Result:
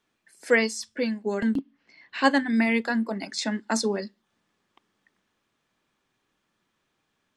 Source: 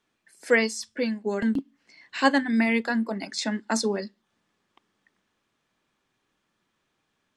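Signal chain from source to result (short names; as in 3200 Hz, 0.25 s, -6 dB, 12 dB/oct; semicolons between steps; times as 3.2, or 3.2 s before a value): 1.59–2.24 LPF 4100 Hz 12 dB/oct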